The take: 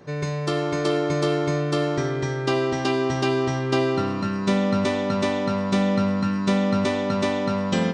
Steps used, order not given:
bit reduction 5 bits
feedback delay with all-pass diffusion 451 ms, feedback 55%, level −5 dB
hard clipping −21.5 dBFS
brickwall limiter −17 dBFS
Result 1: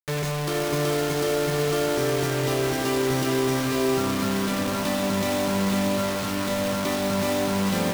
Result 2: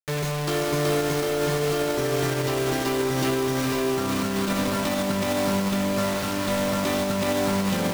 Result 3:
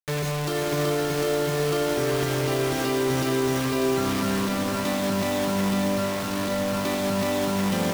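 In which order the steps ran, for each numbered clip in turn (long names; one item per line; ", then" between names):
brickwall limiter, then hard clipping, then feedback delay with all-pass diffusion, then bit reduction
hard clipping, then feedback delay with all-pass diffusion, then bit reduction, then brickwall limiter
bit reduction, then brickwall limiter, then hard clipping, then feedback delay with all-pass diffusion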